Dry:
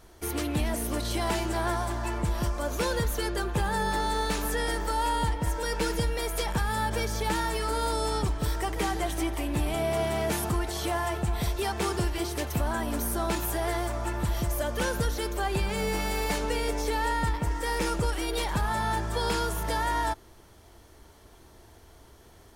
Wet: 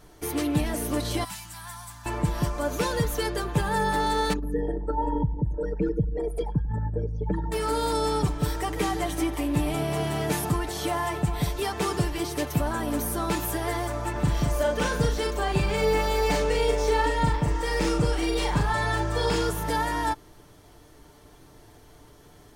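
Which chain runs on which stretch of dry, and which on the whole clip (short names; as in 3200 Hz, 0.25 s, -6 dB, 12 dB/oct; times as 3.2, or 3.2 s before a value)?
1.24–2.06 Chebyshev band-stop 200–910 Hz + pre-emphasis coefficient 0.8
4.33–7.52 formant sharpening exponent 3 + feedback echo 93 ms, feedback 38%, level -20 dB
14.12–19.5 bell 12000 Hz -13.5 dB 0.39 oct + doubler 39 ms -3 dB
whole clip: bell 180 Hz +4 dB 2.3 oct; comb 6.8 ms, depth 48%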